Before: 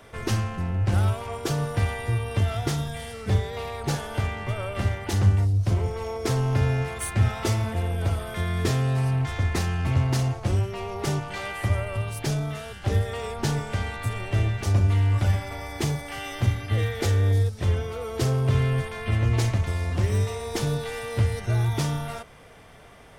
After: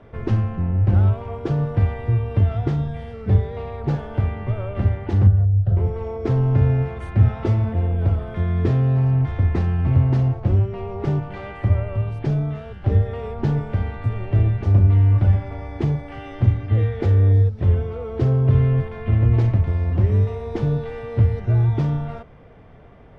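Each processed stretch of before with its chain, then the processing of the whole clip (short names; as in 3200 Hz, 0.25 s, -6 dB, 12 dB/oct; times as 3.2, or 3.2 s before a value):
5.27–5.77 tape spacing loss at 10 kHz 21 dB + fixed phaser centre 1500 Hz, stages 8
whole clip: LPF 2800 Hz 12 dB/oct; tilt shelf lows +6.5 dB, about 720 Hz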